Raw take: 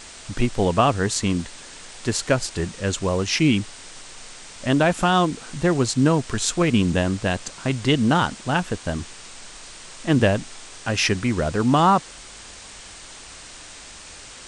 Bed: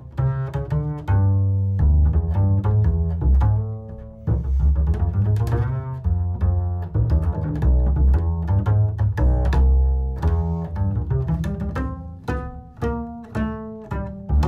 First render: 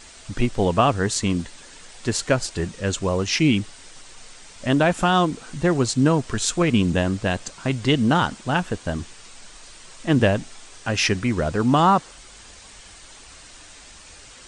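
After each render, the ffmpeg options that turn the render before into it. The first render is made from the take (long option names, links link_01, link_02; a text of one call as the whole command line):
ffmpeg -i in.wav -af "afftdn=noise_reduction=6:noise_floor=-42" out.wav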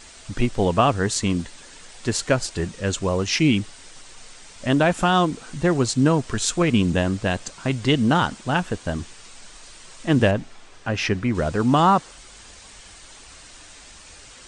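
ffmpeg -i in.wav -filter_complex "[0:a]asettb=1/sr,asplit=3[link_01][link_02][link_03];[link_01]atrim=end=10.314[link_04];[link_02]atrim=start=10.31:end=11.35,asetpts=PTS-STARTPTS,afade=type=in:duration=0.004:curve=qsin,afade=type=out:start_time=1.036:duration=0.004:curve=qsin,lowpass=frequency=2300:poles=1[link_05];[link_03]atrim=start=11.346[link_06];[link_04][link_05]acrossfade=duration=0.004:curve1=hsin:curve2=qsin[link_07];[link_07][link_06]acrossfade=duration=0.004:curve1=qsin:curve2=hsin" out.wav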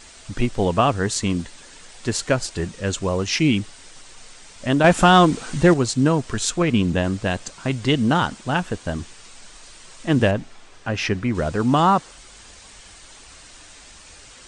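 ffmpeg -i in.wav -filter_complex "[0:a]asettb=1/sr,asplit=3[link_01][link_02][link_03];[link_01]atrim=end=4.844[link_04];[link_02]atrim=start=4.84:end=5.74,asetpts=PTS-STARTPTS,afade=type=in:duration=0.004:curve=qsin,afade=type=out:start_time=0.896:duration=0.004:curve=qsin,acontrast=71[link_05];[link_03]atrim=start=5.736[link_06];[link_04][link_05]acrossfade=duration=0.004:curve1=hsin:curve2=qsin[link_07];[link_07][link_06]acrossfade=duration=0.004:curve1=qsin:curve2=hsin,asettb=1/sr,asplit=3[link_08][link_09][link_10];[link_08]atrim=end=6.504[link_11];[link_09]atrim=start=6.5:end=7.04,asetpts=PTS-STARTPTS,afade=type=in:duration=0.004:curve=qsin,afade=type=out:start_time=0.536:duration=0.004:curve=qsin,highshelf=frequency=8500:gain=-8.5[link_12];[link_10]atrim=start=7.036[link_13];[link_11][link_12]acrossfade=duration=0.004:curve1=hsin:curve2=qsin[link_14];[link_14][link_13]acrossfade=duration=0.004:curve1=qsin:curve2=hsin" out.wav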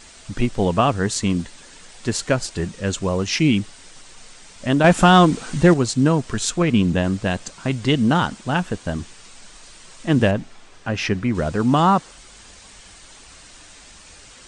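ffmpeg -i in.wav -af "equalizer=frequency=190:width_type=o:width=0.77:gain=3" out.wav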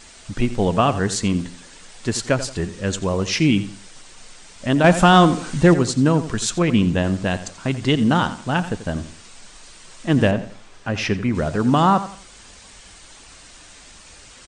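ffmpeg -i in.wav -filter_complex "[0:a]asplit=2[link_01][link_02];[link_02]adelay=86,lowpass=frequency=4000:poles=1,volume=-13dB,asplit=2[link_03][link_04];[link_04]adelay=86,lowpass=frequency=4000:poles=1,volume=0.33,asplit=2[link_05][link_06];[link_06]adelay=86,lowpass=frequency=4000:poles=1,volume=0.33[link_07];[link_01][link_03][link_05][link_07]amix=inputs=4:normalize=0" out.wav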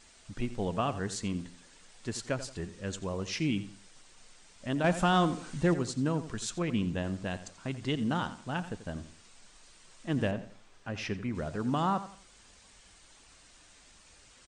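ffmpeg -i in.wav -af "volume=-13.5dB" out.wav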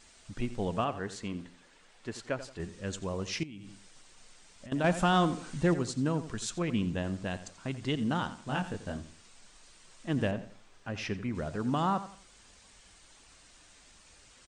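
ffmpeg -i in.wav -filter_complex "[0:a]asettb=1/sr,asplit=3[link_01][link_02][link_03];[link_01]atrim=end=0.844[link_04];[link_02]atrim=start=0.84:end=2.6,asetpts=PTS-STARTPTS,afade=type=in:duration=0.004:curve=qsin,afade=type=out:start_time=1.756:duration=0.004:curve=qsin,bass=frequency=250:gain=-6,treble=frequency=4000:gain=-9[link_05];[link_03]atrim=start=2.596[link_06];[link_04][link_05]acrossfade=duration=0.004:curve1=hsin:curve2=qsin[link_07];[link_07][link_06]acrossfade=duration=0.004:curve1=qsin:curve2=hsin,asettb=1/sr,asplit=3[link_08][link_09][link_10];[link_08]atrim=end=3.434[link_11];[link_09]atrim=start=3.43:end=4.72,asetpts=PTS-STARTPTS,afade=type=in:duration=0.004:curve=qsin,afade=type=out:start_time=1.286:duration=0.004:curve=qsin,acompressor=threshold=-42dB:ratio=10:attack=3.2:release=140:knee=1:detection=peak[link_12];[link_10]atrim=start=4.716[link_13];[link_11][link_12]acrossfade=duration=0.004:curve1=hsin:curve2=qsin[link_14];[link_14][link_13]acrossfade=duration=0.004:curve1=qsin:curve2=hsin,asettb=1/sr,asplit=3[link_15][link_16][link_17];[link_15]atrim=end=8.454[link_18];[link_16]atrim=start=8.45:end=8.97,asetpts=PTS-STARTPTS,afade=type=in:duration=0.004:curve=qsin,afade=type=out:start_time=0.516:duration=0.004:curve=qsin,asplit=2[link_19][link_20];[link_20]adelay=21,volume=-2dB[link_21];[link_19][link_21]amix=inputs=2:normalize=0,atrim=end_sample=22932[link_22];[link_17]atrim=start=8.966[link_23];[link_18][link_22]acrossfade=duration=0.004:curve1=hsin:curve2=qsin[link_24];[link_24][link_23]acrossfade=duration=0.004:curve1=qsin:curve2=hsin" out.wav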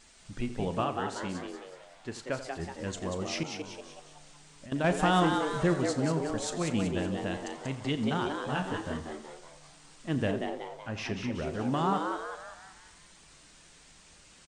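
ffmpeg -i in.wav -filter_complex "[0:a]asplit=2[link_01][link_02];[link_02]adelay=37,volume=-14dB[link_03];[link_01][link_03]amix=inputs=2:normalize=0,asplit=2[link_04][link_05];[link_05]asplit=6[link_06][link_07][link_08][link_09][link_10][link_11];[link_06]adelay=187,afreqshift=140,volume=-5.5dB[link_12];[link_07]adelay=374,afreqshift=280,volume=-12.1dB[link_13];[link_08]adelay=561,afreqshift=420,volume=-18.6dB[link_14];[link_09]adelay=748,afreqshift=560,volume=-25.2dB[link_15];[link_10]adelay=935,afreqshift=700,volume=-31.7dB[link_16];[link_11]adelay=1122,afreqshift=840,volume=-38.3dB[link_17];[link_12][link_13][link_14][link_15][link_16][link_17]amix=inputs=6:normalize=0[link_18];[link_04][link_18]amix=inputs=2:normalize=0" out.wav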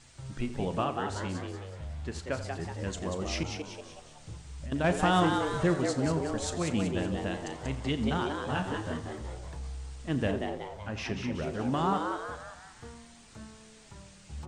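ffmpeg -i in.wav -i bed.wav -filter_complex "[1:a]volume=-23.5dB[link_01];[0:a][link_01]amix=inputs=2:normalize=0" out.wav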